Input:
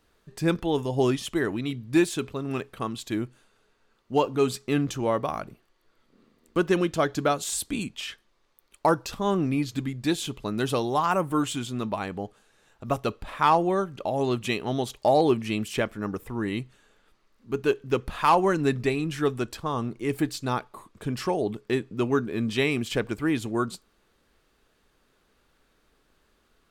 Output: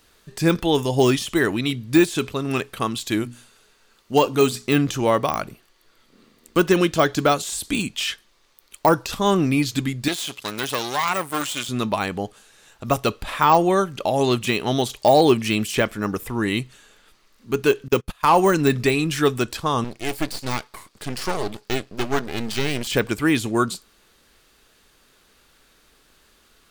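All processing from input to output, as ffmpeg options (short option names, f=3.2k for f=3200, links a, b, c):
-filter_complex "[0:a]asettb=1/sr,asplit=3[a][b][c];[a]atrim=end=3.204[d];[b]atrim=start=3.2:end=4.67,asetpts=PTS-STARTPTS,afade=t=in:d=0.004:c=qsin,afade=t=out:st=1.466:d=0.004:c=qsin,equalizer=f=13k:t=o:w=1.9:g=3.5,bandreject=f=60:t=h:w=6,bandreject=f=120:t=h:w=6,bandreject=f=180:t=h:w=6,bandreject=f=240:t=h:w=6,bandreject=f=300:t=h:w=6[e];[c]atrim=start=4.666[f];[d][e]acrossfade=d=0.004:c1=hsin:c2=qsin[g];[g][f]acrossfade=d=0.004:c1=qsin:c2=hsin,asettb=1/sr,asplit=3[h][i][j];[h]atrim=end=10.084[k];[i]atrim=start=10.08:end=11.69,asetpts=PTS-STARTPTS,afade=t=in:d=0.004:c=qsin,afade=t=out:st=1.606:d=0.004:c=qsin,aeval=exprs='if(lt(val(0),0),0.251*val(0),val(0))':c=same,highpass=f=170:p=1,tiltshelf=f=910:g=-6.5[l];[j]atrim=start=11.686[m];[k][l]acrossfade=d=0.004:c1=hsin:c2=qsin[n];[n][m]acrossfade=d=0.004:c1=qsin:c2=hsin,asettb=1/sr,asplit=3[o][p][q];[o]atrim=end=17.884[r];[p]atrim=start=17.88:end=18.53,asetpts=PTS-STARTPTS,afade=t=in:d=0.004:c=qsin,afade=t=out:st=0.646:d=0.004:c=qsin,agate=range=-29dB:threshold=-32dB:ratio=16:release=100:detection=peak,highshelf=f=8.7k:g=8[s];[q]atrim=start=18.526[t];[r][s]acrossfade=d=0.004:c1=hsin:c2=qsin[u];[u][t]acrossfade=d=0.004:c1=qsin:c2=hsin,asettb=1/sr,asplit=3[v][w][x];[v]atrim=end=19.844[y];[w]atrim=start=19.84:end=22.87,asetpts=PTS-STARTPTS,afade=t=in:d=0.004:c=qsin,afade=t=out:st=3.026:d=0.004:c=qsin,highpass=f=170:p=1,equalizer=f=4.6k:t=o:w=0.37:g=8,aeval=exprs='max(val(0),0)':c=same[z];[x]atrim=start=22.866[aa];[y][z]acrossfade=d=0.004:c1=hsin:c2=qsin[ab];[ab][aa]acrossfade=d=0.004:c1=qsin:c2=hsin,deesser=0.95,highshelf=f=2.1k:g=10,volume=5.5dB"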